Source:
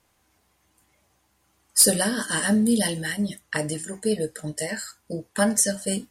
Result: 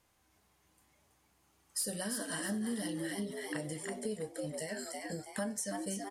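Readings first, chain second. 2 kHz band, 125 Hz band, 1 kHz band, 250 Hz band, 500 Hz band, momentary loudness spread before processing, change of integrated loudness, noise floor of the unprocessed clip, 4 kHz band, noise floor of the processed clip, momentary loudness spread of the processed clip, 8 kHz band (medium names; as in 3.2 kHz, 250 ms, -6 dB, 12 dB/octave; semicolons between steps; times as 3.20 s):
-14.0 dB, -13.5 dB, -11.5 dB, -13.5 dB, -12.5 dB, 13 LU, -15.0 dB, -68 dBFS, -15.5 dB, -72 dBFS, 5 LU, -16.5 dB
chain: harmonic-percussive split harmonic +4 dB; frequency-shifting echo 327 ms, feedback 39%, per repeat +95 Hz, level -6.5 dB; compression 3:1, threshold -30 dBFS, peak gain reduction 14 dB; trim -8 dB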